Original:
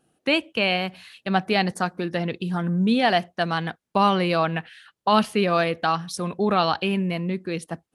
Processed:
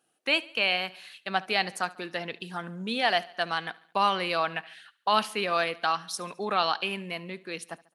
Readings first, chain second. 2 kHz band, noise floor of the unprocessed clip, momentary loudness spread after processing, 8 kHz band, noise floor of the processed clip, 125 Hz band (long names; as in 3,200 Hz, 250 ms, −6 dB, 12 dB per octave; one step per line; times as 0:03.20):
−2.0 dB, −79 dBFS, 12 LU, −1.0 dB, −74 dBFS, −16.0 dB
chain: high-pass filter 1,000 Hz 6 dB per octave
on a send: repeating echo 71 ms, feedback 53%, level −21 dB
on the sum: level −1 dB